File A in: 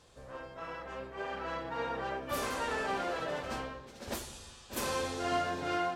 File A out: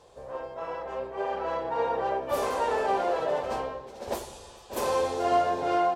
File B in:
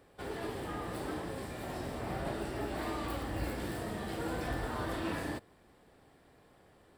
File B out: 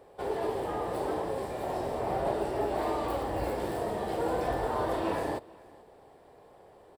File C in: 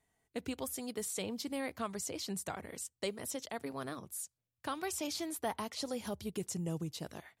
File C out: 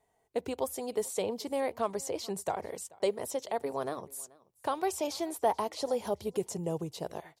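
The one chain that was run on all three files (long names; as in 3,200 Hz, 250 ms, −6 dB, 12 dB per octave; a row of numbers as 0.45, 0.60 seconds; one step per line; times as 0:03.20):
flat-topped bell 620 Hz +10 dB
single-tap delay 434 ms −24 dB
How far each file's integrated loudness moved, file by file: +7.5, +6.0, +5.5 LU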